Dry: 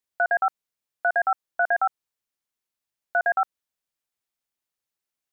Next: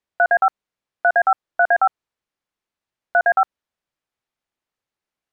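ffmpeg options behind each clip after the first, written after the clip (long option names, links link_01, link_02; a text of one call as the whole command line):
ffmpeg -i in.wav -af "aemphasis=mode=reproduction:type=75fm,volume=6.5dB" out.wav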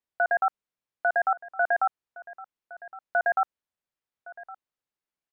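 ffmpeg -i in.wav -af "aecho=1:1:1114:0.112,volume=-8dB" out.wav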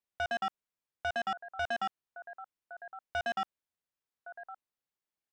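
ffmpeg -i in.wav -af "asoftclip=type=tanh:threshold=-25dB,volume=-3.5dB" out.wav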